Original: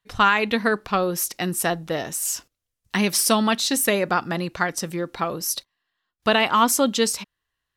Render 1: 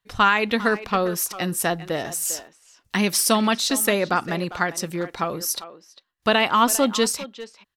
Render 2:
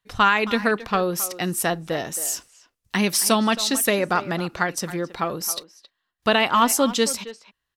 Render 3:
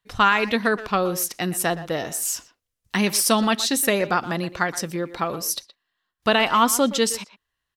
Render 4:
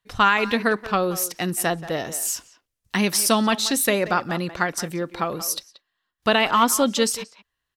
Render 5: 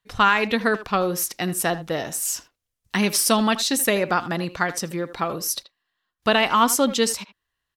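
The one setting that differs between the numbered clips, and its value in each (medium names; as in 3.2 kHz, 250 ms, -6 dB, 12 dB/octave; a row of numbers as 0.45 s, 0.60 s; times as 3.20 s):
speakerphone echo, time: 400 ms, 270 ms, 120 ms, 180 ms, 80 ms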